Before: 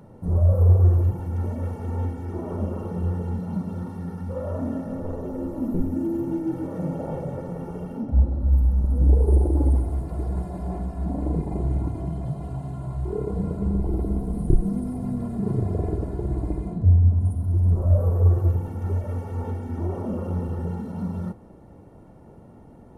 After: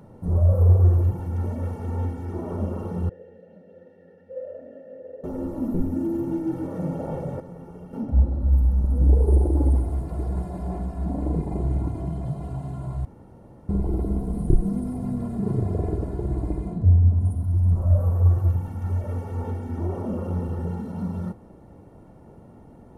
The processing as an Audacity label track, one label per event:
3.090000	5.240000	formant filter e
7.400000	7.930000	clip gain −8 dB
13.050000	13.690000	fill with room tone
17.430000	18.990000	parametric band 410 Hz −9.5 dB

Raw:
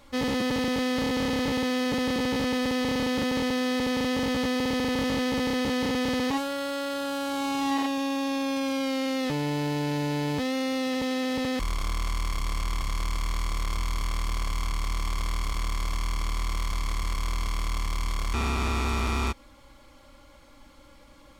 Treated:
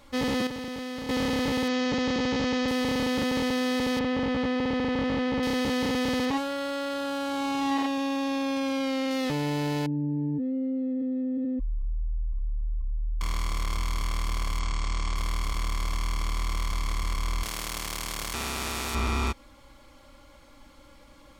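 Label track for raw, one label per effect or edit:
0.470000	1.090000	clip gain −8.5 dB
1.680000	2.680000	Butterworth low-pass 7,100 Hz 48 dB per octave
3.990000	5.430000	Bessel low-pass filter 2,600 Hz
6.250000	9.110000	high-shelf EQ 7,000 Hz −7.5 dB
9.860000	13.210000	expanding power law on the bin magnitudes exponent 3.1
14.590000	15.160000	Butterworth low-pass 8,700 Hz 48 dB per octave
17.430000	18.950000	every bin compressed towards the loudest bin 2 to 1

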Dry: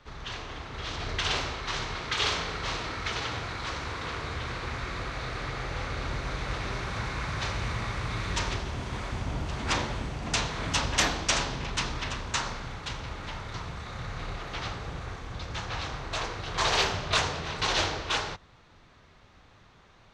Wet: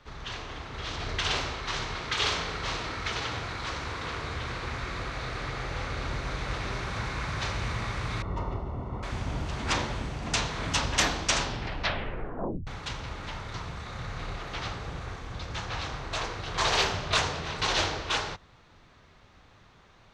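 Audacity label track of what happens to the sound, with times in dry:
8.220000	9.030000	Savitzky-Golay smoothing over 65 samples
11.430000	11.430000	tape stop 1.24 s

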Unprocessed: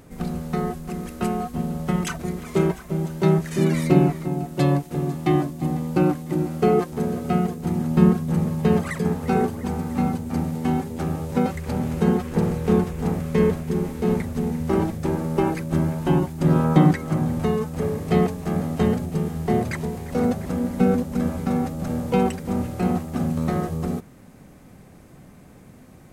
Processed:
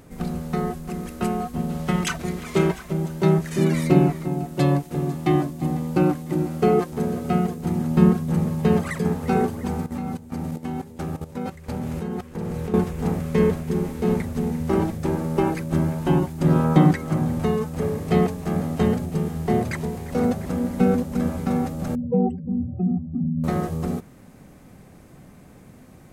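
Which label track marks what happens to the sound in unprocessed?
1.690000	2.930000	parametric band 3,100 Hz +5.5 dB 2.5 octaves
9.860000	12.740000	output level in coarse steps of 14 dB
21.950000	23.440000	expanding power law on the bin magnitudes exponent 2.6

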